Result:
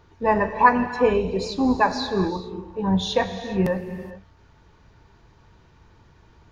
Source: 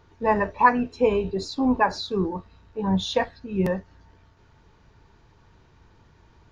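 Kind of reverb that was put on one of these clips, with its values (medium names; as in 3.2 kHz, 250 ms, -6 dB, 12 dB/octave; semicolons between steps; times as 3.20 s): gated-style reverb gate 450 ms flat, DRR 8.5 dB; trim +1.5 dB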